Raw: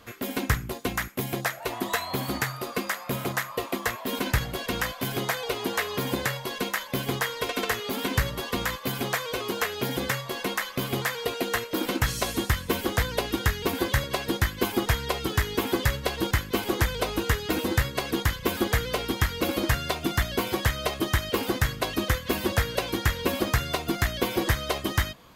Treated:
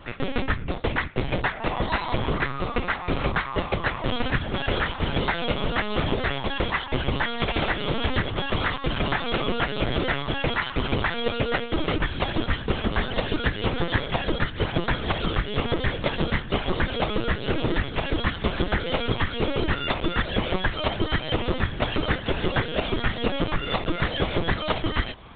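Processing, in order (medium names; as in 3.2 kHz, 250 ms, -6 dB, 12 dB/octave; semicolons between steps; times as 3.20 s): compression 8:1, threshold -27 dBFS, peak gain reduction 10.5 dB; LPC vocoder at 8 kHz pitch kept; trim +8 dB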